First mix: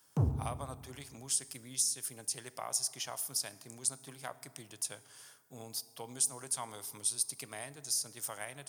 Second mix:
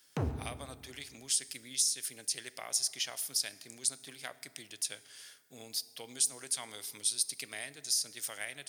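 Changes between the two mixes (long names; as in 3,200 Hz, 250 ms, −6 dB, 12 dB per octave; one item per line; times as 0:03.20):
background: add parametric band 1,400 Hz +10.5 dB 2.9 octaves
master: add octave-band graphic EQ 125/1,000/2,000/4,000 Hz −8/−9/+7/+7 dB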